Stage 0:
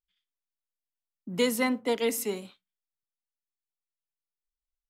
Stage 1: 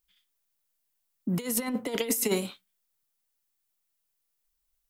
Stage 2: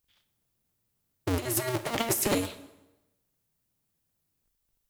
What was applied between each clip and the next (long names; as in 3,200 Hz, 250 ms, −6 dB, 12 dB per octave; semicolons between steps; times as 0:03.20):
high-shelf EQ 8,500 Hz +10 dB; compressor whose output falls as the input rises −31 dBFS, ratio −0.5; level +4 dB
sub-harmonics by changed cycles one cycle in 2, inverted; dense smooth reverb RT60 1 s, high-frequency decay 0.85×, DRR 11 dB